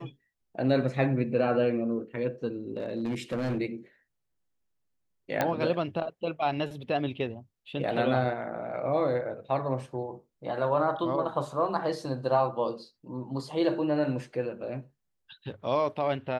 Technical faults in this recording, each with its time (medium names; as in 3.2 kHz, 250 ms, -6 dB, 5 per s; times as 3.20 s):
2.77–3.58 s: clipped -26 dBFS
5.41 s: pop -12 dBFS